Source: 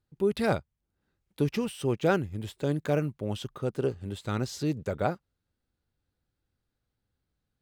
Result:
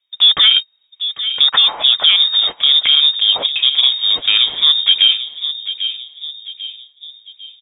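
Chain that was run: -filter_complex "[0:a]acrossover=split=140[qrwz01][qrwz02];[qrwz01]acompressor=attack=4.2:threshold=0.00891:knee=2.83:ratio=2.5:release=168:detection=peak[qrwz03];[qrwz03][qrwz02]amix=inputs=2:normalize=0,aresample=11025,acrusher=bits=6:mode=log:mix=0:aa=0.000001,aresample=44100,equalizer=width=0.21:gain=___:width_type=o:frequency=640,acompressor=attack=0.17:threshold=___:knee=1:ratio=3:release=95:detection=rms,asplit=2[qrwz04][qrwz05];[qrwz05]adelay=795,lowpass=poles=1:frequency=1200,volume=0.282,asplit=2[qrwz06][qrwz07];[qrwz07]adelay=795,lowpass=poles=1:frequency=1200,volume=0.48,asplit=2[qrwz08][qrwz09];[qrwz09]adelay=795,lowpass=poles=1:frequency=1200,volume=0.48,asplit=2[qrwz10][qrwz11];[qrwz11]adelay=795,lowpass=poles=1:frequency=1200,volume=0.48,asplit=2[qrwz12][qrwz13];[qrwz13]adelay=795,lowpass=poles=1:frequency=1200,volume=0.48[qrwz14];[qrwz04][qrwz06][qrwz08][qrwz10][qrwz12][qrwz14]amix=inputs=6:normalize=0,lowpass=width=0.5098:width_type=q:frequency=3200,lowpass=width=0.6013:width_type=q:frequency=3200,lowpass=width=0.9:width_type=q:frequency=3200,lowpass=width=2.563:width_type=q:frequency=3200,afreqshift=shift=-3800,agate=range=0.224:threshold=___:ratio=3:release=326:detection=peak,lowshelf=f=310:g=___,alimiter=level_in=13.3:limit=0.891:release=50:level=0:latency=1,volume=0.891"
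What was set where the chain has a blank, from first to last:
15, 0.0447, 0.00141, -4.5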